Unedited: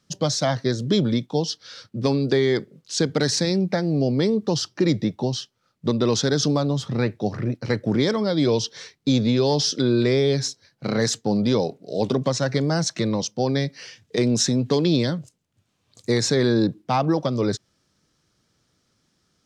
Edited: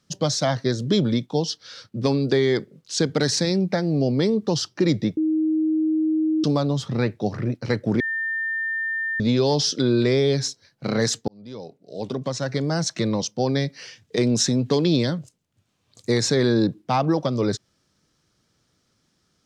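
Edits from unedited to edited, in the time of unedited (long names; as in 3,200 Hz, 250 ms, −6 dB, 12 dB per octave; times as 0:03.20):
0:05.17–0:06.44: beep over 314 Hz −18 dBFS
0:08.00–0:09.20: beep over 1,800 Hz −23 dBFS
0:11.28–0:13.03: fade in linear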